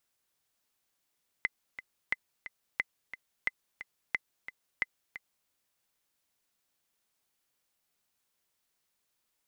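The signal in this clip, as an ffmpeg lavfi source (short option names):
-f lavfi -i "aevalsrc='pow(10,(-15-13*gte(mod(t,2*60/178),60/178))/20)*sin(2*PI*2040*mod(t,60/178))*exp(-6.91*mod(t,60/178)/0.03)':d=4.04:s=44100"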